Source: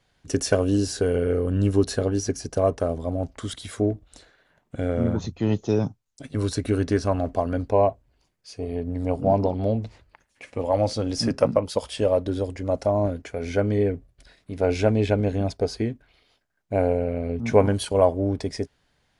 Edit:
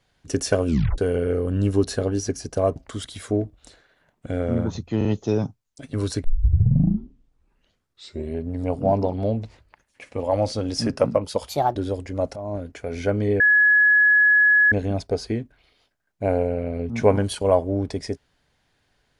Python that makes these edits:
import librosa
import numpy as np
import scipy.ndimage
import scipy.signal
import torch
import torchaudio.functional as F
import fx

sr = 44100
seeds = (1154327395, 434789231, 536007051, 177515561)

y = fx.edit(x, sr, fx.tape_stop(start_s=0.66, length_s=0.32),
    fx.cut(start_s=2.76, length_s=0.49),
    fx.stutter(start_s=5.46, slice_s=0.04, count=3),
    fx.tape_start(start_s=6.65, length_s=2.25),
    fx.speed_span(start_s=11.9, length_s=0.35, speed=1.35),
    fx.fade_in_from(start_s=12.86, length_s=0.46, floor_db=-14.5),
    fx.bleep(start_s=13.9, length_s=1.32, hz=1690.0, db=-12.5), tone=tone)